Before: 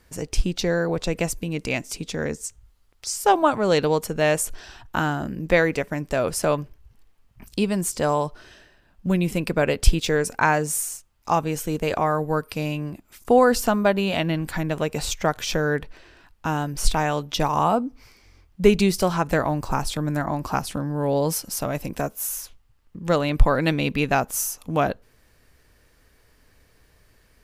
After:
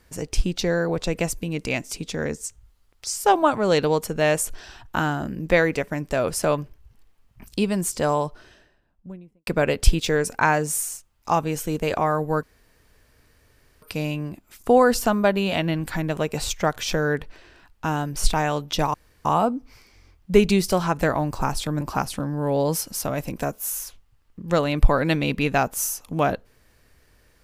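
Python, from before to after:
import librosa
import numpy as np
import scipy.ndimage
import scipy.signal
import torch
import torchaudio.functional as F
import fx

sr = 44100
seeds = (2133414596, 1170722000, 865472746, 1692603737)

y = fx.studio_fade_out(x, sr, start_s=8.08, length_s=1.39)
y = fx.edit(y, sr, fx.insert_room_tone(at_s=12.43, length_s=1.39),
    fx.insert_room_tone(at_s=17.55, length_s=0.31),
    fx.cut(start_s=20.11, length_s=0.27), tone=tone)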